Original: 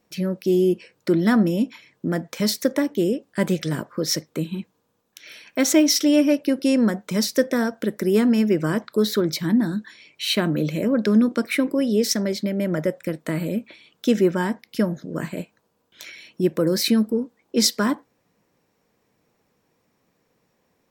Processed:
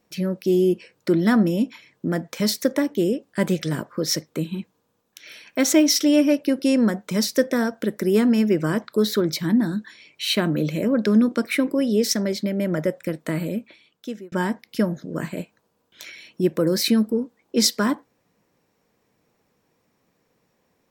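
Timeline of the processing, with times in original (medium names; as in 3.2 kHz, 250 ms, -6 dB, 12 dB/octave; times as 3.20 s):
13.37–14.32 s: fade out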